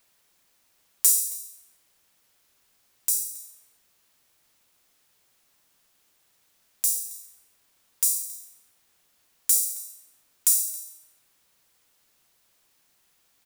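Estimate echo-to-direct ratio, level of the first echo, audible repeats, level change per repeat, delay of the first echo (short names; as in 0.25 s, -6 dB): -20.5 dB, -20.5 dB, 1, no steady repeat, 0.272 s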